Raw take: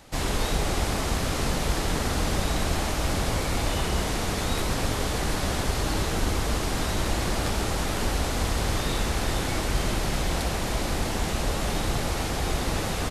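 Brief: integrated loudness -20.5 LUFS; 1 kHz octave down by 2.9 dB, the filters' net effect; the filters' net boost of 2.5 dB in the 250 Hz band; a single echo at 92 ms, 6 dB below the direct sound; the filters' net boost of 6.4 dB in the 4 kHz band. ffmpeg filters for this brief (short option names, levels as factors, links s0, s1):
-af "equalizer=f=250:t=o:g=3.5,equalizer=f=1000:t=o:g=-4.5,equalizer=f=4000:t=o:g=8,aecho=1:1:92:0.501,volume=1.5"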